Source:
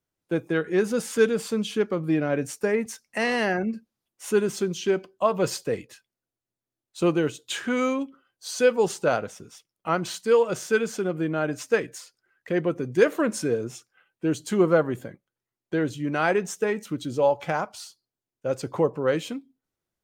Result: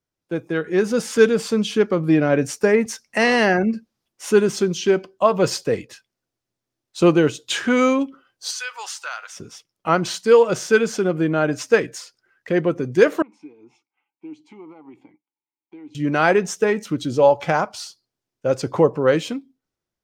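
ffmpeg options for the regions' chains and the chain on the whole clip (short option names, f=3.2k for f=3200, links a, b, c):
-filter_complex "[0:a]asettb=1/sr,asplit=3[a][b][c];[a]atrim=end=8.514[d];[b]atrim=start=8.51:end=9.37,asetpts=PTS-STARTPTS,afade=t=in:d=0.004:c=qsin,afade=t=out:st=0.856:d=0.004:c=qsin,highpass=f=1.1k:w=0.5412,highpass=f=1.1k:w=1.3066,acompressor=threshold=-36dB:ratio=2.5:attack=3.2:release=140:knee=1:detection=peak[e];[c]atrim=start=9.366[f];[d][e]acrossfade=d=0.004:c1=hsin:c2=qsin[g];[g][f]acrossfade=d=0.004:c1=qsin:c2=hsin,asettb=1/sr,asplit=3[h][i][j];[h]atrim=end=13.224[k];[i]atrim=start=13.22:end=15.95,asetpts=PTS-STARTPTS,afade=t=in:d=0.004:c=qsin,afade=t=out:st=2.726:d=0.004:c=qsin,lowshelf=f=440:t=q:w=1.5:g=-6.5,acompressor=threshold=-35dB:ratio=3:attack=3.2:release=140:knee=1:detection=peak,asplit=3[l][m][n];[l]bandpass=f=300:t=q:w=8,volume=0dB[o];[m]bandpass=f=870:t=q:w=8,volume=-6dB[p];[n]bandpass=f=2.24k:t=q:w=8,volume=-9dB[q];[o][p][q]amix=inputs=3:normalize=0[r];[j]atrim=start=15.946[s];[k][r]acrossfade=d=0.004:c1=hsin:c2=qsin[t];[t][s]acrossfade=d=0.004:c1=qsin:c2=hsin,equalizer=f=5.4k:w=2.3:g=4.5,dynaudnorm=f=140:g=11:m=8dB,highshelf=f=7.6k:g=-7.5"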